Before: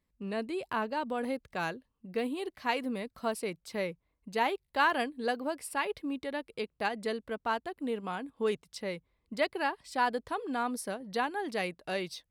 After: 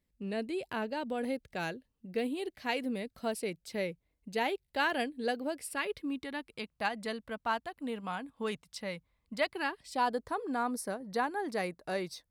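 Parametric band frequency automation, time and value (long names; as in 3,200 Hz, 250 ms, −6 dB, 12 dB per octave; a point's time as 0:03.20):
parametric band −9.5 dB 0.64 octaves
0:05.54 1,100 Hz
0:06.77 380 Hz
0:09.44 380 Hz
0:10.21 3,000 Hz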